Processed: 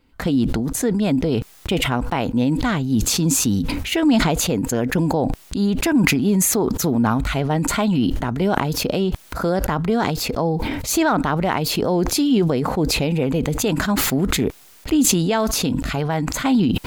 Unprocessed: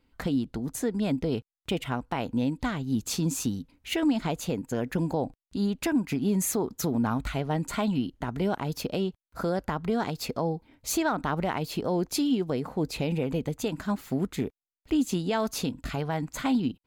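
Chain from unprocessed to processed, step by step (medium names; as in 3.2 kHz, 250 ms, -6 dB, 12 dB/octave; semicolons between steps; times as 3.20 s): decay stretcher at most 24 dB/s; trim +7.5 dB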